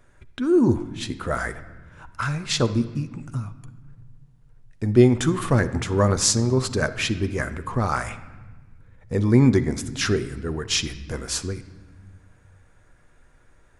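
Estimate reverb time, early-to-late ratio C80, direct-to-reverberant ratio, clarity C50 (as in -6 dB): 1.3 s, 15.5 dB, 10.0 dB, 13.5 dB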